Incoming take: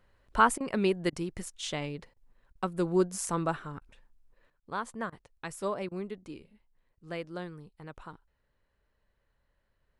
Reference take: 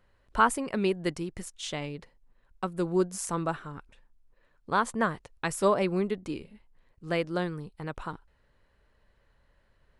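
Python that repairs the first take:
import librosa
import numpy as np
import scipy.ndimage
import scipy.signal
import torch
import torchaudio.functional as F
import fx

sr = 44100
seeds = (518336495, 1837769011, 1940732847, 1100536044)

y = fx.fix_interpolate(x, sr, at_s=(0.58, 1.1, 2.14, 2.53, 3.79, 4.6, 5.1, 5.89), length_ms=23.0)
y = fx.fix_level(y, sr, at_s=4.5, step_db=9.0)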